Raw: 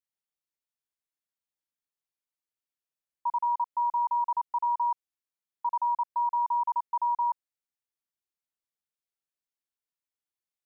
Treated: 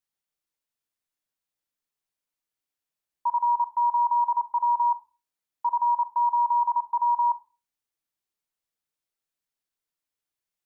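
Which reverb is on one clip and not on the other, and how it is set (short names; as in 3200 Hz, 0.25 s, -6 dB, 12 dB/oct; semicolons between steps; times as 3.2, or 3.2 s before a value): shoebox room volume 170 m³, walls furnished, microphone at 0.49 m; gain +3.5 dB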